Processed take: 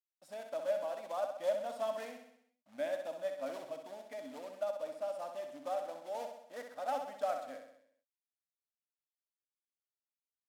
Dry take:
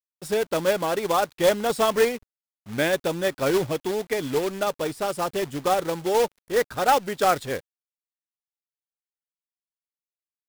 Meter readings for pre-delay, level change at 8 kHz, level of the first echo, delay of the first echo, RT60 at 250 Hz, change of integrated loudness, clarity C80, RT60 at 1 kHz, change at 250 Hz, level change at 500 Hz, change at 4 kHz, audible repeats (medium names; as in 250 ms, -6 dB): no reverb, -23.5 dB, -6.5 dB, 64 ms, no reverb, -15.5 dB, no reverb, no reverb, -23.0 dB, -14.0 dB, -22.0 dB, 6